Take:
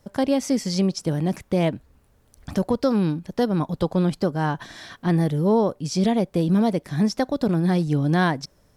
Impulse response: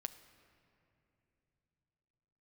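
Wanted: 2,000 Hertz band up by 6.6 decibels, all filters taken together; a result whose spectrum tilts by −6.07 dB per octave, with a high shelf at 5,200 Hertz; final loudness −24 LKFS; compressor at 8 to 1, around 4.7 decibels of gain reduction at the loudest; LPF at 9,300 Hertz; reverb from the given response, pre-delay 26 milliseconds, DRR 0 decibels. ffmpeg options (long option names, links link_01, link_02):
-filter_complex "[0:a]lowpass=9300,equalizer=frequency=2000:width_type=o:gain=9,highshelf=frequency=5200:gain=-3.5,acompressor=threshold=-20dB:ratio=8,asplit=2[link_01][link_02];[1:a]atrim=start_sample=2205,adelay=26[link_03];[link_02][link_03]afir=irnorm=-1:irlink=0,volume=3dB[link_04];[link_01][link_04]amix=inputs=2:normalize=0,volume=-1dB"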